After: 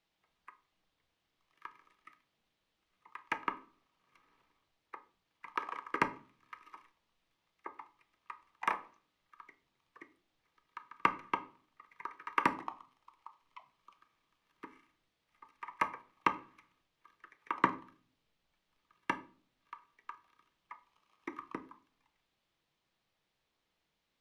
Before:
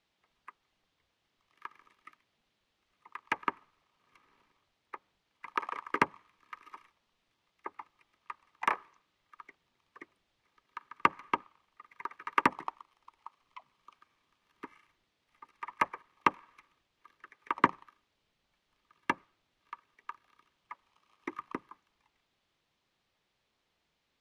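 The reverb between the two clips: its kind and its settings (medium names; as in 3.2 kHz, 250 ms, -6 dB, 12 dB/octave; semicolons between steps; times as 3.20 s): simulated room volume 320 m³, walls furnished, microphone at 0.63 m; trim -4 dB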